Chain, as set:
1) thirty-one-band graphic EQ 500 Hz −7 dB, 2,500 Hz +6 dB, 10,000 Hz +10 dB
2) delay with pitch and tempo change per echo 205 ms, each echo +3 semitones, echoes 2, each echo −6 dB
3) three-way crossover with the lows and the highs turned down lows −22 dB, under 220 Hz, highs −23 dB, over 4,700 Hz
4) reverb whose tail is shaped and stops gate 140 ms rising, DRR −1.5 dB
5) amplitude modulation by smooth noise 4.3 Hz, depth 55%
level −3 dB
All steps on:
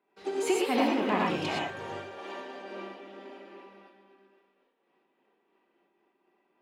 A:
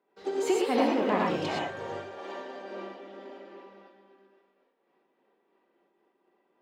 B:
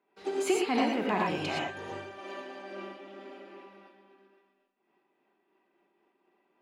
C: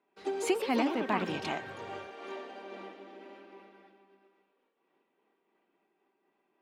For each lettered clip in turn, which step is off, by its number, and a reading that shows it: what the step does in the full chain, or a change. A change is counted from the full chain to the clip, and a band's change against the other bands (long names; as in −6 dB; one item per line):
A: 1, 500 Hz band +3.0 dB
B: 2, change in integrated loudness −1.0 LU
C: 4, change in integrated loudness −3.0 LU